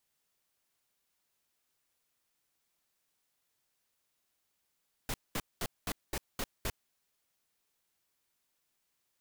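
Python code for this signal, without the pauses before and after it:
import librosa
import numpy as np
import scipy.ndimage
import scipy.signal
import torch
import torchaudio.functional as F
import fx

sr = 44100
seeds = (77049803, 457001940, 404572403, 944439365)

y = fx.noise_burst(sr, seeds[0], colour='pink', on_s=0.05, off_s=0.21, bursts=7, level_db=-34.5)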